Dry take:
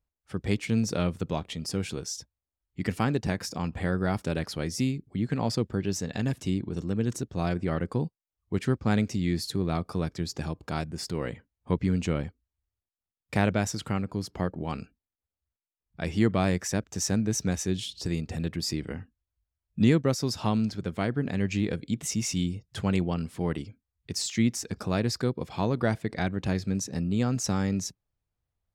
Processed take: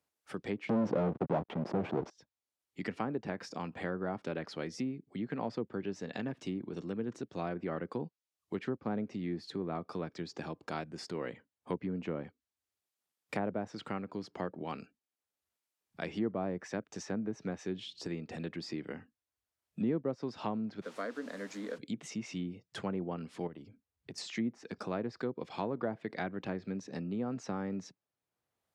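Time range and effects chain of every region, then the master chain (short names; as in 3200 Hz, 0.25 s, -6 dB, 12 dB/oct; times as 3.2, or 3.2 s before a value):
0.69–2.1 backlash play -35 dBFS + sample leveller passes 5
20.81–21.77 HPF 270 Hz 24 dB/oct + fixed phaser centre 540 Hz, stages 8 + added noise pink -51 dBFS
23.47–24.18 tilt -3 dB/oct + compressor 4:1, threshold -37 dBFS
whole clip: treble ducked by the level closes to 910 Hz, closed at -21 dBFS; HPF 240 Hz 12 dB/oct; three-band squash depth 40%; gain -5.5 dB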